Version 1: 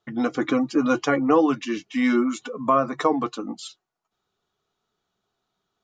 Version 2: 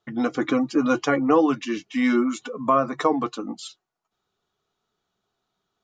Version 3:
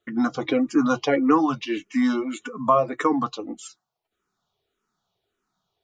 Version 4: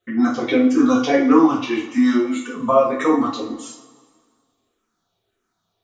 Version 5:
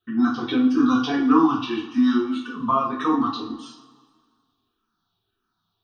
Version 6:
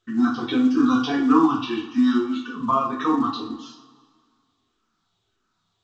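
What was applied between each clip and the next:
no processing that can be heard
frequency shifter mixed with the dry sound −1.7 Hz; level +3 dB
coupled-rooms reverb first 0.44 s, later 1.8 s, from −18 dB, DRR −5.5 dB; level −2 dB
phaser with its sweep stopped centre 2,100 Hz, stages 6
mu-law 128 kbit/s 16,000 Hz

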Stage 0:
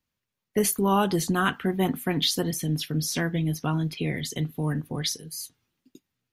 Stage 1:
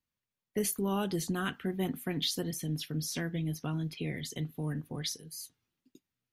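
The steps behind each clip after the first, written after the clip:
dynamic equaliser 990 Hz, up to −7 dB, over −39 dBFS, Q 1.3
level −7.5 dB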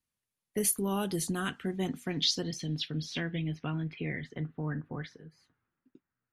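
low-pass filter sweep 11,000 Hz → 1,500 Hz, 0:01.15–0:04.42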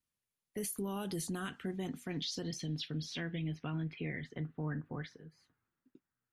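brickwall limiter −27 dBFS, peak gain reduction 11.5 dB
level −3 dB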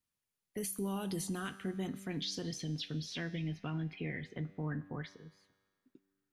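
tuned comb filter 97 Hz, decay 1.6 s, harmonics all, mix 60%
level +7.5 dB

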